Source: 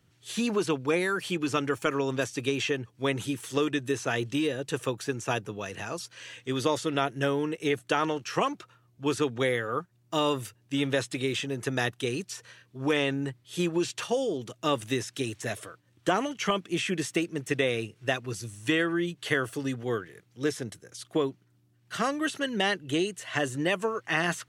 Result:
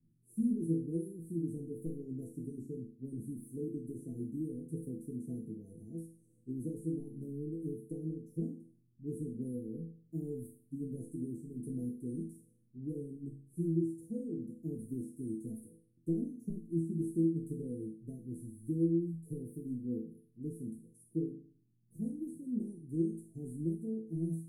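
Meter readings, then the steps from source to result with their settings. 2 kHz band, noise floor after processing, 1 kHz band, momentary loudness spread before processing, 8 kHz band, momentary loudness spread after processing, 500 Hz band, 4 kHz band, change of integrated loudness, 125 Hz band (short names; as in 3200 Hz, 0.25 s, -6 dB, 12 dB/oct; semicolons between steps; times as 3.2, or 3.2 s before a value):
under -40 dB, -69 dBFS, under -40 dB, 8 LU, -21.0 dB, 12 LU, -14.5 dB, under -40 dB, -10.0 dB, -4.0 dB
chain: Chebyshev band-stop 350–9600 Hz, order 4; tilt -2 dB/oct; resonator bank E3 sus4, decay 0.47 s; de-hum 45.81 Hz, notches 11; gain +13 dB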